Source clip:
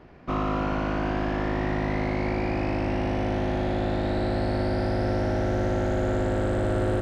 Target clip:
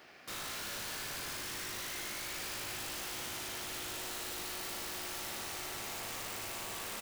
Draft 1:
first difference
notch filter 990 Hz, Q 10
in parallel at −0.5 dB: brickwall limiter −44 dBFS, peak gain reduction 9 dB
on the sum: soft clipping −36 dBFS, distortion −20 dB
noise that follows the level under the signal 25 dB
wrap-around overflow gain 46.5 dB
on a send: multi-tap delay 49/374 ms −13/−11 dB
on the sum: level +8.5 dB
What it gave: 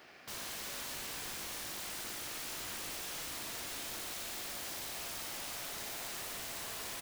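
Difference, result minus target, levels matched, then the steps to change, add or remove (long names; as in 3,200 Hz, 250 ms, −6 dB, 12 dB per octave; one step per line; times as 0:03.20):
soft clipping: distortion −10 dB
change: soft clipping −44 dBFS, distortion −10 dB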